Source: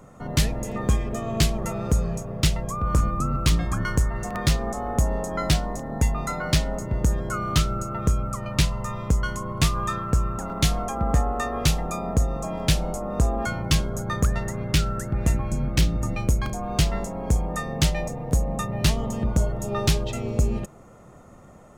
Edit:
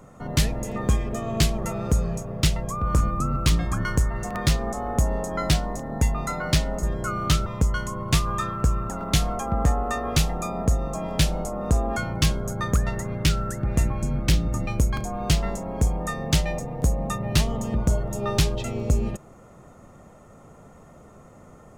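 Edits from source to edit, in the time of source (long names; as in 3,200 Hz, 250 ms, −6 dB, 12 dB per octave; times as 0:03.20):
0:06.83–0:07.09: remove
0:07.72–0:08.95: remove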